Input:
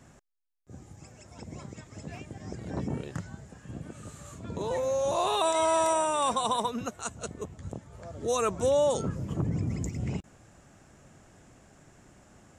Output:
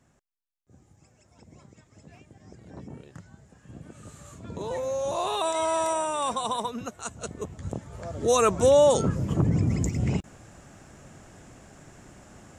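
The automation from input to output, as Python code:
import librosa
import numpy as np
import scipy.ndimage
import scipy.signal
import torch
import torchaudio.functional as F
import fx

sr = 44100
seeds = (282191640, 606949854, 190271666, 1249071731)

y = fx.gain(x, sr, db=fx.line((3.12, -9.5), (4.13, -1.0), (6.94, -1.0), (7.85, 6.5)))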